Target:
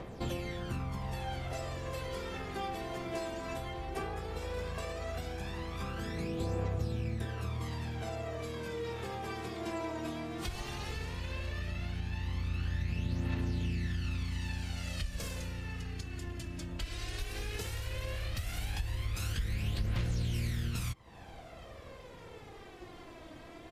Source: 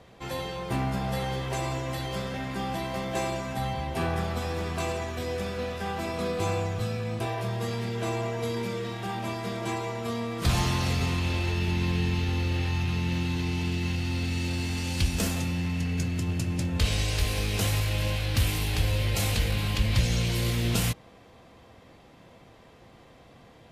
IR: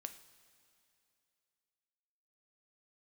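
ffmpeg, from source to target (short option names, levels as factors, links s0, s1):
-filter_complex "[0:a]asplit=2[s0][s1];[s1]asetrate=29433,aresample=44100,atempo=1.49831,volume=0.794[s2];[s0][s2]amix=inputs=2:normalize=0,acompressor=threshold=0.0141:ratio=8,aphaser=in_gain=1:out_gain=1:delay=3.2:decay=0.58:speed=0.15:type=triangular"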